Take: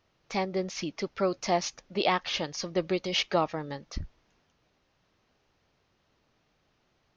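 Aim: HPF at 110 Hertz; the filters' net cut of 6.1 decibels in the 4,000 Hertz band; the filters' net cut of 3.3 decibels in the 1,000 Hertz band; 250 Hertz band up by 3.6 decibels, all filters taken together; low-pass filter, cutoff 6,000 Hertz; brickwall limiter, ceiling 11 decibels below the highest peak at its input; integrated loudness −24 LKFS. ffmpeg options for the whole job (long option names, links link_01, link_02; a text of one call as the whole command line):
ffmpeg -i in.wav -af "highpass=110,lowpass=6000,equalizer=frequency=250:width_type=o:gain=7,equalizer=frequency=1000:width_type=o:gain=-5,equalizer=frequency=4000:width_type=o:gain=-7.5,volume=12dB,alimiter=limit=-12dB:level=0:latency=1" out.wav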